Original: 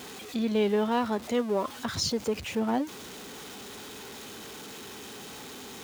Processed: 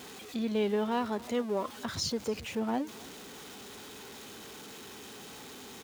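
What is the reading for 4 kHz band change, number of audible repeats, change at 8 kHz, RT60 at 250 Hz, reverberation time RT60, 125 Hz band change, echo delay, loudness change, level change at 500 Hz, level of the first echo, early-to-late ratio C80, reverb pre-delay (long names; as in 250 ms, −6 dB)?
−4.0 dB, 1, −4.0 dB, no reverb audible, no reverb audible, −4.0 dB, 276 ms, −4.0 dB, −4.0 dB, −21.5 dB, no reverb audible, no reverb audible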